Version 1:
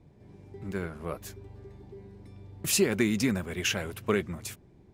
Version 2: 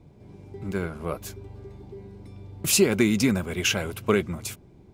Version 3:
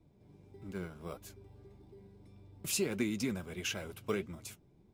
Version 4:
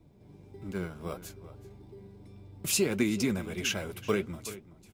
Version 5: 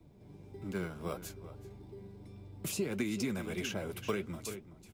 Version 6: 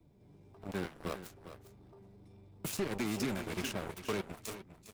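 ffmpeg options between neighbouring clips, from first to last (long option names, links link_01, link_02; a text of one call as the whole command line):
ffmpeg -i in.wav -af "bandreject=frequency=1800:width=7.5,volume=5dB" out.wav
ffmpeg -i in.wav -filter_complex "[0:a]acrossover=split=650|1100[link_01][link_02][link_03];[link_02]acrusher=samples=10:mix=1:aa=0.000001[link_04];[link_01][link_04][link_03]amix=inputs=3:normalize=0,flanger=delay=3:depth=4:regen=69:speed=1.6:shape=sinusoidal,volume=-8.5dB" out.wav
ffmpeg -i in.wav -filter_complex "[0:a]asplit=2[link_01][link_02];[link_02]adelay=379,volume=-15dB,highshelf=frequency=4000:gain=-8.53[link_03];[link_01][link_03]amix=inputs=2:normalize=0,volume=6dB" out.wav
ffmpeg -i in.wav -filter_complex "[0:a]acrossover=split=140|970[link_01][link_02][link_03];[link_01]acompressor=threshold=-47dB:ratio=4[link_04];[link_02]acompressor=threshold=-33dB:ratio=4[link_05];[link_03]acompressor=threshold=-40dB:ratio=4[link_06];[link_04][link_05][link_06]amix=inputs=3:normalize=0" out.wav
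ffmpeg -i in.wav -af "asoftclip=type=tanh:threshold=-27dB,aeval=exprs='0.0447*(cos(1*acos(clip(val(0)/0.0447,-1,1)))-cos(1*PI/2))+0.01*(cos(7*acos(clip(val(0)/0.0447,-1,1)))-cos(7*PI/2))':channel_layout=same,aecho=1:1:405:0.237" out.wav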